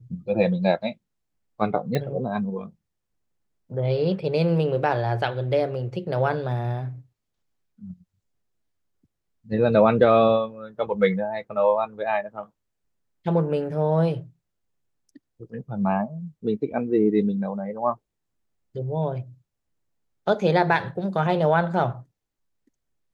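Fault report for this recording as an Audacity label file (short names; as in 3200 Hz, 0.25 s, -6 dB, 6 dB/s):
1.950000	1.950000	pop -13 dBFS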